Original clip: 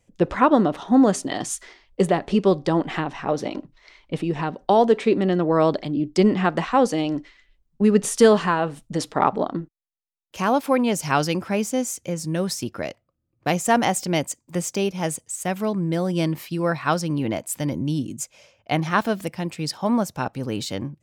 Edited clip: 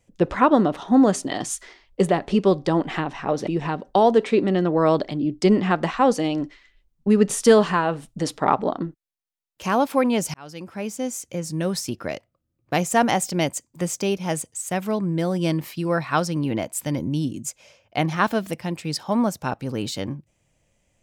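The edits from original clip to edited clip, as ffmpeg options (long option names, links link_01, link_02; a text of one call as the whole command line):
ffmpeg -i in.wav -filter_complex "[0:a]asplit=3[link_01][link_02][link_03];[link_01]atrim=end=3.472[link_04];[link_02]atrim=start=4.208:end=11.08,asetpts=PTS-STARTPTS,afade=type=out:start_time=6.868:duration=0.004:curve=hsin[link_05];[link_03]atrim=start=11.08,asetpts=PTS-STARTPTS,afade=type=in:duration=1.58:curve=qsin[link_06];[link_05][link_06]concat=n=2:v=0:a=1[link_07];[link_04][link_07]acrossfade=duration=0.004:curve1=hsin:curve2=hsin" out.wav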